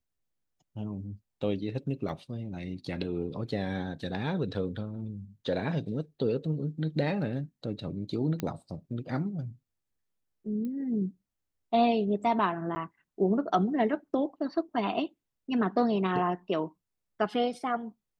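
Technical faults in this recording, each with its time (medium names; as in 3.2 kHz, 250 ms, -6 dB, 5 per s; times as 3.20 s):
2.09 s: dropout 2.4 ms
8.40 s: pop -18 dBFS
10.65 s: pop -27 dBFS
12.75–12.76 s: dropout 10 ms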